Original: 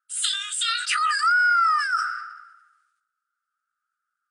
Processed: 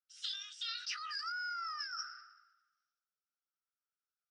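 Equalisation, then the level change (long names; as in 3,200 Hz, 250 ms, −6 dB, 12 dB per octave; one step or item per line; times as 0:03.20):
resonant band-pass 5,600 Hz, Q 14
high-frequency loss of the air 290 metres
+15.0 dB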